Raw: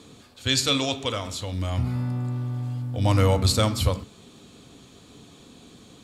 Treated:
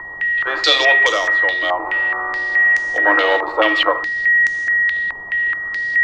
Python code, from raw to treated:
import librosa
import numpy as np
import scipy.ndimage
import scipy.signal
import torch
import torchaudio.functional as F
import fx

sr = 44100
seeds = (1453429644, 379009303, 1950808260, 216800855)

y = fx.leveller(x, sr, passes=3)
y = fx.tilt_eq(y, sr, slope=-3.5)
y = y + 10.0 ** (-23.0 / 20.0) * np.sin(2.0 * np.pi * 1900.0 * np.arange(len(y)) / sr)
y = scipy.signal.sosfilt(scipy.signal.cheby1(10, 1.0, 310.0, 'highpass', fs=sr, output='sos'), y)
y = fx.peak_eq(y, sr, hz=400.0, db=-11.5, octaves=0.87)
y = fx.dmg_noise_colour(y, sr, seeds[0], colour='pink', level_db=-50.0)
y = fx.filter_held_lowpass(y, sr, hz=4.7, low_hz=980.0, high_hz=6200.0)
y = y * librosa.db_to_amplitude(3.5)